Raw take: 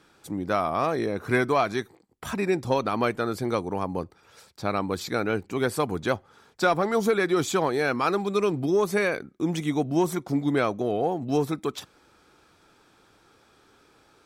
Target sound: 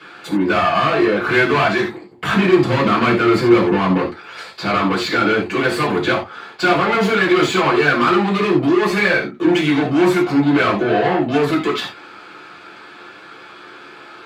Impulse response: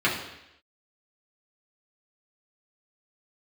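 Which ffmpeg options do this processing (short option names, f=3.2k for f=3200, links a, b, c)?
-filter_complex "[0:a]asettb=1/sr,asplit=3[a][b][c];[a]atrim=end=1.814[d];[b]atrim=start=1.81:end=4.02,asetpts=PTS-STARTPTS,afade=t=in:d=0.004:c=qsin,afade=t=out:st=2.206:d=0.004:c=qsin,lowshelf=f=300:g=10[e];[c]atrim=start=4.016[f];[d][e]acrossfade=d=0.004:c1=hsin:c2=qsin[g];[g][f]acrossfade=d=0.004:c1=qsin:c2=hsin,asplit=2[h][i];[i]highpass=f=720:p=1,volume=30dB,asoftclip=type=tanh:threshold=-7.5dB[j];[h][j]amix=inputs=2:normalize=0,lowpass=f=4.2k:p=1,volume=-6dB[k];[1:a]atrim=start_sample=2205,atrim=end_sample=4410[l];[k][l]afir=irnorm=-1:irlink=0,volume=-14.5dB"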